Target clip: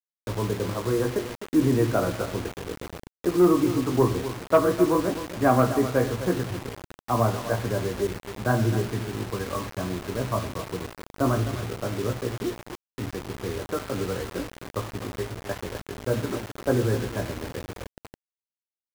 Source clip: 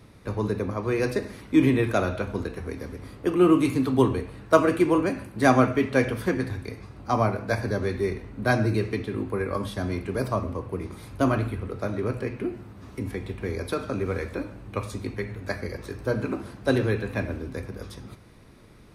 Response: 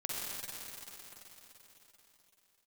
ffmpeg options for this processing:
-filter_complex "[0:a]lowpass=f=1500:w=0.5412,lowpass=f=1500:w=1.3066,asplit=2[s0][s1];[s1]adelay=17,volume=0.473[s2];[s0][s2]amix=inputs=2:normalize=0,aeval=exprs='sgn(val(0))*max(abs(val(0))-0.0075,0)':c=same,aeval=exprs='val(0)+0.00178*(sin(2*PI*60*n/s)+sin(2*PI*2*60*n/s)/2+sin(2*PI*3*60*n/s)/3+sin(2*PI*4*60*n/s)/4+sin(2*PI*5*60*n/s)/5)':c=same,acontrast=65,aecho=1:1:256|512|768:0.251|0.0628|0.0157,asettb=1/sr,asplit=3[s3][s4][s5];[s3]atrim=end=8.074[s6];[s4]atrim=start=8.07:end=10.63,asetpts=PTS-STARTPTS,afade=t=in:d=0.004:c=qsin,afade=t=out:st=2.556:d=0.004:c=qsin,adynamicequalizer=threshold=0.0251:dfrequency=450:dqfactor=1.8:tfrequency=450:tqfactor=1.8:attack=5:release=100:ratio=0.375:range=2:mode=cutabove:tftype=bell[s7];[s5]atrim=start=10.626[s8];[s6][s7]acrossfade=d=0.004:c1=hsin:c2=qsin[s9];[s9][s8]acrossfade=d=0.004:c1=qsin:c2=hsin,acrusher=bits=4:mix=0:aa=0.000001,volume=0.473"

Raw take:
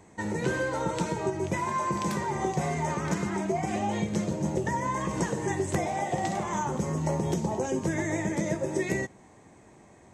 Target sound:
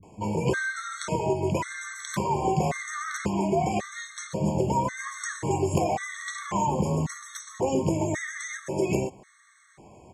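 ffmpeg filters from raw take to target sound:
-filter_complex "[0:a]acrossover=split=250[s0][s1];[s1]adelay=30[s2];[s0][s2]amix=inputs=2:normalize=0,afftfilt=real='re*gt(sin(2*PI*0.92*pts/sr)*(1-2*mod(floor(b*sr/1024/1100),2)),0)':imag='im*gt(sin(2*PI*0.92*pts/sr)*(1-2*mod(floor(b*sr/1024/1100),2)),0)':win_size=1024:overlap=0.75,volume=1.88"

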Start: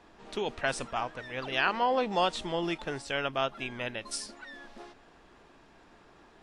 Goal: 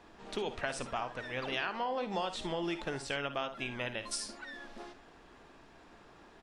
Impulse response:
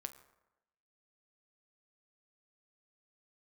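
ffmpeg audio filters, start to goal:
-filter_complex "[0:a]acompressor=threshold=0.0251:ratio=6,asplit=2[s0][s1];[s1]aecho=0:1:56|71:0.237|0.168[s2];[s0][s2]amix=inputs=2:normalize=0"

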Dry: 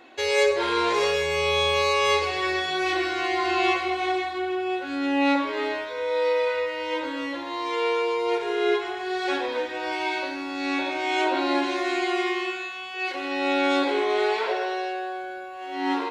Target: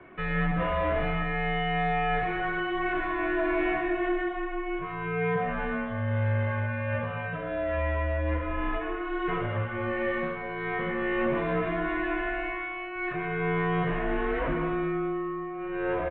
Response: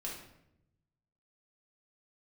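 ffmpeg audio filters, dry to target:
-filter_complex "[0:a]highpass=240,asplit=2[s0][s1];[s1]highpass=f=720:p=1,volume=7.08,asoftclip=type=tanh:threshold=0.299[s2];[s0][s2]amix=inputs=2:normalize=0,lowpass=f=1200:p=1,volume=0.501,asplit=2[s3][s4];[s4]aecho=0:1:225:0.211[s5];[s3][s5]amix=inputs=2:normalize=0,highpass=f=450:t=q:w=0.5412,highpass=f=450:t=q:w=1.307,lowpass=f=3000:t=q:w=0.5176,lowpass=f=3000:t=q:w=0.7071,lowpass=f=3000:t=q:w=1.932,afreqshift=-390,volume=0.562"

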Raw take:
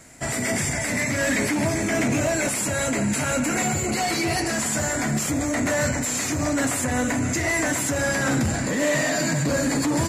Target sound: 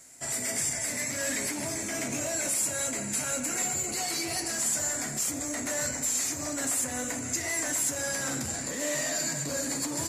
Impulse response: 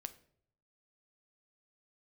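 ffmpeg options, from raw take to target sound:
-filter_complex "[0:a]bass=f=250:g=-6,treble=f=4000:g=11[s0];[1:a]atrim=start_sample=2205[s1];[s0][s1]afir=irnorm=-1:irlink=0,volume=0.447"

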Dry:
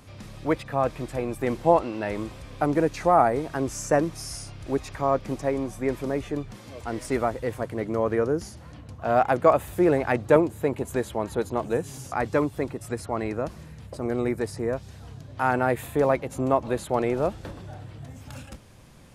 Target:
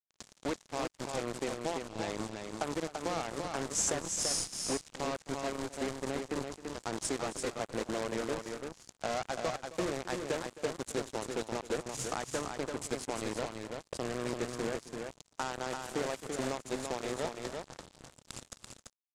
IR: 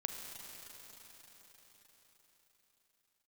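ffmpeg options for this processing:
-filter_complex "[0:a]bandreject=f=50:t=h:w=6,bandreject=f=100:t=h:w=6,bandreject=f=150:t=h:w=6,bandreject=f=200:t=h:w=6,bandreject=f=250:t=h:w=6,bandreject=f=300:t=h:w=6,bandreject=f=350:t=h:w=6,acrossover=split=120[s0][s1];[s0]aeval=exprs='(mod(133*val(0)+1,2)-1)/133':c=same[s2];[s1]acompressor=threshold=0.0251:ratio=12[s3];[s2][s3]amix=inputs=2:normalize=0,aexciter=amount=2.7:drive=2.5:freq=3400,asplit=2[s4][s5];[s5]adynamicsmooth=sensitivity=2.5:basefreq=790,volume=0.531[s6];[s4][s6]amix=inputs=2:normalize=0,acrusher=bits=4:mix=0:aa=0.5,lowpass=f=7200:t=q:w=2.1,aecho=1:1:265|338:0.15|0.562,volume=0.631"

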